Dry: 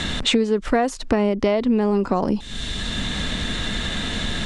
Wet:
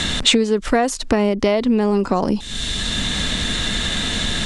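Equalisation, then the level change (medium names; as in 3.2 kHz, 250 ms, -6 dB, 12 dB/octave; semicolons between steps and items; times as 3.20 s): treble shelf 3.9 kHz +8.5 dB; +2.0 dB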